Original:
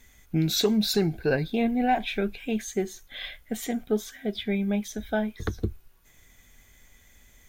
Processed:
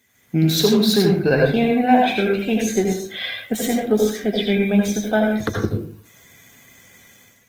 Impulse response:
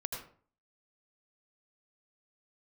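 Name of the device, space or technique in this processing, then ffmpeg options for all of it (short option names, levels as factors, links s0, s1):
far-field microphone of a smart speaker: -filter_complex "[1:a]atrim=start_sample=2205[s0];[0:a][s0]afir=irnorm=-1:irlink=0,highpass=f=110:w=0.5412,highpass=f=110:w=1.3066,dynaudnorm=f=110:g=5:m=3.76,volume=0.841" -ar 48000 -c:a libopus -b:a 20k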